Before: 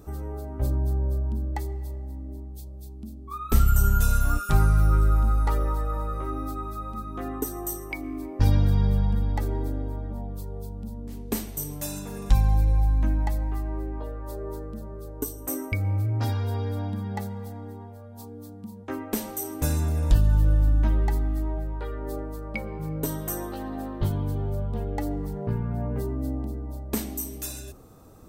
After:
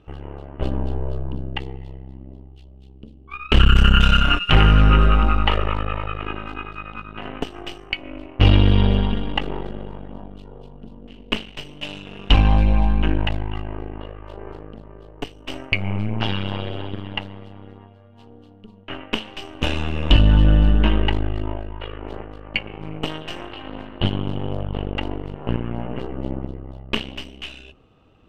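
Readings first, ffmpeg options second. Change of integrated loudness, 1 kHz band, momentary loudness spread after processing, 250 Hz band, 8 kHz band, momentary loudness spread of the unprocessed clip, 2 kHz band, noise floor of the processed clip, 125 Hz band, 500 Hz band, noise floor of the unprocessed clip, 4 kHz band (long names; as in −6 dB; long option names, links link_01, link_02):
+6.0 dB, +7.0 dB, 21 LU, +6.0 dB, below −10 dB, 16 LU, +13.0 dB, −46 dBFS, +3.5 dB, +5.0 dB, −41 dBFS, +20.5 dB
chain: -af "aeval=exprs='0.422*(cos(1*acos(clip(val(0)/0.422,-1,1)))-cos(1*PI/2))+0.0473*(cos(5*acos(clip(val(0)/0.422,-1,1)))-cos(5*PI/2))+0.075*(cos(7*acos(clip(val(0)/0.422,-1,1)))-cos(7*PI/2))+0.0596*(cos(8*acos(clip(val(0)/0.422,-1,1)))-cos(8*PI/2))':channel_layout=same,lowpass=frequency=2900:width_type=q:width=12,volume=4dB"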